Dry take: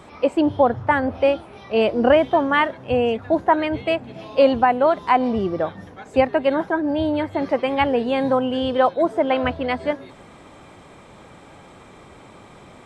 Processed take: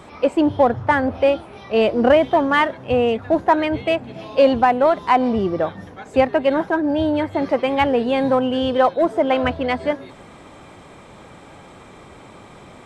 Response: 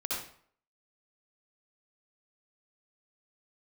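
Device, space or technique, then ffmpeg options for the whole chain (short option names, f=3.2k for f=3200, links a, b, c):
parallel distortion: -filter_complex "[0:a]asplit=2[a][b];[b]asoftclip=type=hard:threshold=-18dB,volume=-10dB[c];[a][c]amix=inputs=2:normalize=0"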